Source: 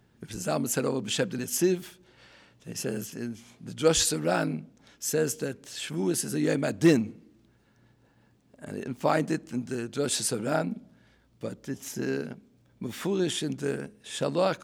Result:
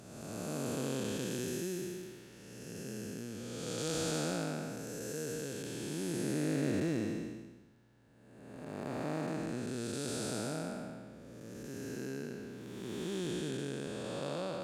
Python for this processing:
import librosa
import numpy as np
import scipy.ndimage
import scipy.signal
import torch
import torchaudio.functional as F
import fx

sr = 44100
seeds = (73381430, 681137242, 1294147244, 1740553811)

y = fx.spec_blur(x, sr, span_ms=623.0)
y = F.gain(torch.from_numpy(y), -3.0).numpy()